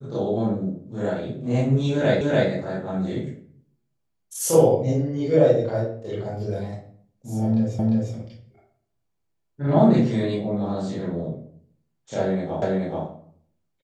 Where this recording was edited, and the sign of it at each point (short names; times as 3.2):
2.21 repeat of the last 0.29 s
7.79 repeat of the last 0.35 s
12.62 repeat of the last 0.43 s